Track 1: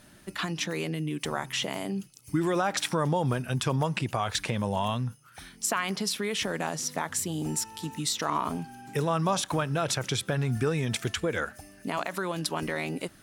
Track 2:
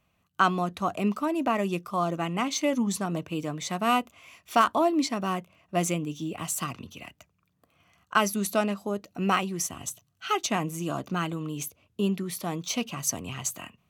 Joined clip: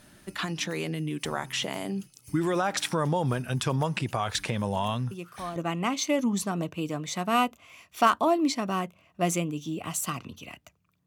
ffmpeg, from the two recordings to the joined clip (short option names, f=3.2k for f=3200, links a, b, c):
-filter_complex "[1:a]asplit=2[a][b];[0:a]apad=whole_dur=11.06,atrim=end=11.06,atrim=end=5.562[c];[b]atrim=start=2.098:end=7.6[d];[a]atrim=start=1.65:end=2.1,asetpts=PTS-STARTPTS,volume=-9dB,afade=t=in:d=0.004:c=hsin,afade=t=out:st=0.446:d=0.004:c=hsin,adelay=5110[e];[c][d]acrossfade=d=0.004:c1=hsin:c2=hsin[f];[f][e]amix=inputs=2:normalize=0"